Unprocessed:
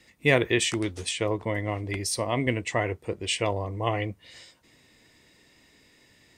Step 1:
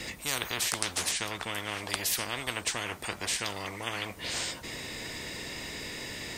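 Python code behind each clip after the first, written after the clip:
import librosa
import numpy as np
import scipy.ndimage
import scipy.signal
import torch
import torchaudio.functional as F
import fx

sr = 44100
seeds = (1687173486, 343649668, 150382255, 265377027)

y = fx.spectral_comp(x, sr, ratio=10.0)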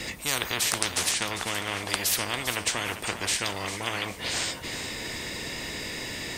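y = fx.echo_feedback(x, sr, ms=399, feedback_pct=33, wet_db=-11.0)
y = F.gain(torch.from_numpy(y), 4.0).numpy()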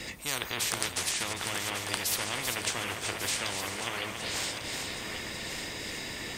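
y = fx.reverse_delay_fb(x, sr, ms=574, feedback_pct=67, wet_db=-6.5)
y = F.gain(torch.from_numpy(y), -5.0).numpy()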